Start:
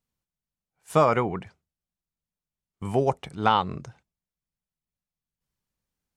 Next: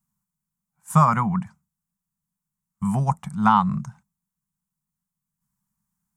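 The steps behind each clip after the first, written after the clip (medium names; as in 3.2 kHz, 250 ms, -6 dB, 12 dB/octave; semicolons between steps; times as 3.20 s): FFT filter 100 Hz 0 dB, 150 Hz +11 dB, 210 Hz +13 dB, 300 Hz -15 dB, 450 Hz -19 dB, 1 kHz +8 dB, 2.8 kHz -8 dB, 4.3 kHz -6 dB, 7.5 kHz +8 dB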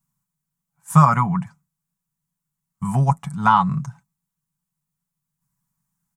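comb 7.1 ms, depth 54%; trim +1.5 dB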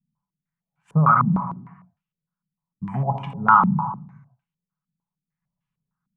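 gated-style reverb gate 500 ms falling, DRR 4.5 dB; step-sequenced low-pass 6.6 Hz 220–2800 Hz; trim -7 dB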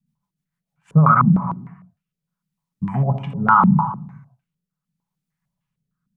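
rotary cabinet horn 6.7 Hz, later 0.75 Hz, at 0.81 s; loudness maximiser +8 dB; trim -1 dB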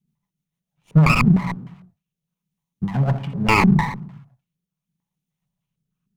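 comb filter that takes the minimum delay 0.32 ms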